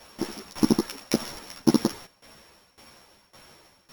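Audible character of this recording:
a buzz of ramps at a fixed pitch in blocks of 8 samples
tremolo saw down 1.8 Hz, depth 90%
a shimmering, thickened sound

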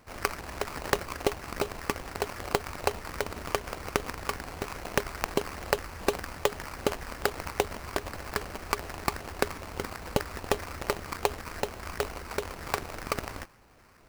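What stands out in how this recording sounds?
phaser sweep stages 12, 2.5 Hz, lowest notch 560–2,700 Hz
aliases and images of a low sample rate 3,500 Hz, jitter 20%

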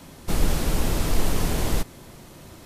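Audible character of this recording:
background noise floor −46 dBFS
spectral slope −4.5 dB per octave

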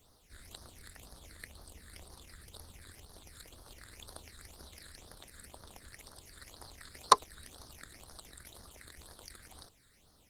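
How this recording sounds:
a quantiser's noise floor 12 bits, dither triangular
phaser sweep stages 8, 2 Hz, lowest notch 800–2,500 Hz
Opus

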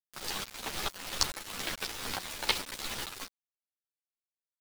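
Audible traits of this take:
tremolo saw up 2.3 Hz, depth 60%
a quantiser's noise floor 6 bits, dither none
a shimmering, thickened sound

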